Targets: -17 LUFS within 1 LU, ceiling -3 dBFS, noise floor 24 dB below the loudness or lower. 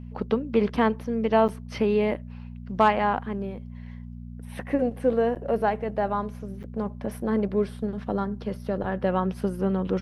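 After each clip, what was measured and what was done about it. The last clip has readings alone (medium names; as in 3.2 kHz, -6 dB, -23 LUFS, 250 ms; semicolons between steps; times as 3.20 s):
dropouts 3; longest dropout 8.0 ms; hum 60 Hz; highest harmonic 240 Hz; hum level -37 dBFS; loudness -26.5 LUFS; peak level -8.0 dBFS; loudness target -17.0 LUFS
-> interpolate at 1.48/5.35/6.63 s, 8 ms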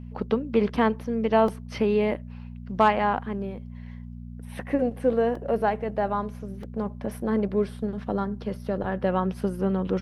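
dropouts 0; hum 60 Hz; highest harmonic 240 Hz; hum level -37 dBFS
-> de-hum 60 Hz, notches 4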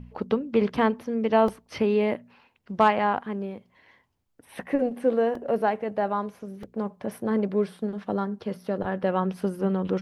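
hum not found; loudness -26.5 LUFS; peak level -7.5 dBFS; loudness target -17.0 LUFS
-> trim +9.5 dB; peak limiter -3 dBFS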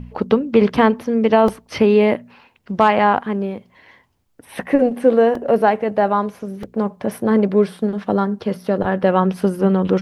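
loudness -17.5 LUFS; peak level -3.0 dBFS; noise floor -58 dBFS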